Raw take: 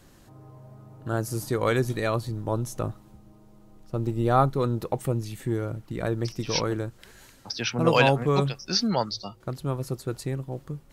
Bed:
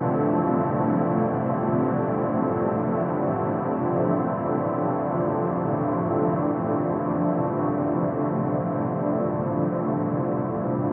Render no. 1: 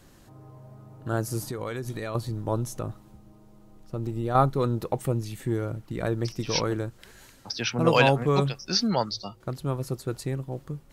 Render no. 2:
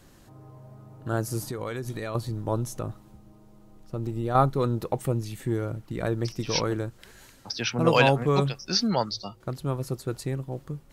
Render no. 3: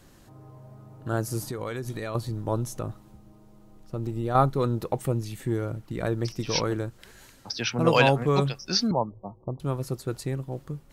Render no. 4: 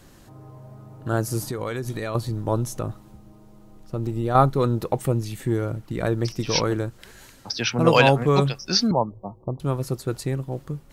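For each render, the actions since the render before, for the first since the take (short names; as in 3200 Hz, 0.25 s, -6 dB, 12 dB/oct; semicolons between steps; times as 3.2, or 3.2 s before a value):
1.48–2.15 compressor 5:1, threshold -29 dBFS; 2.74–4.35 compressor 2:1, threshold -28 dBFS
nothing audible
8.91–9.6 steep low-pass 1100 Hz 96 dB/oct
gain +4 dB; limiter -2 dBFS, peak gain reduction 2.5 dB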